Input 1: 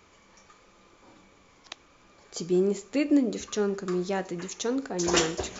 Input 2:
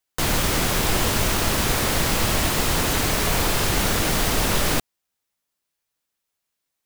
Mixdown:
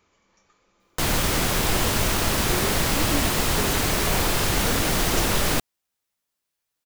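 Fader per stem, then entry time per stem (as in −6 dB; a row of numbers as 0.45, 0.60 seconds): −8.0, −1.0 decibels; 0.00, 0.80 seconds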